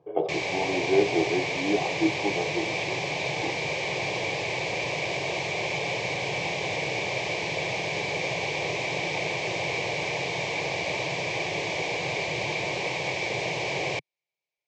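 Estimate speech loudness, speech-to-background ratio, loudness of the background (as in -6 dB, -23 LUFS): -29.5 LUFS, -1.0 dB, -28.5 LUFS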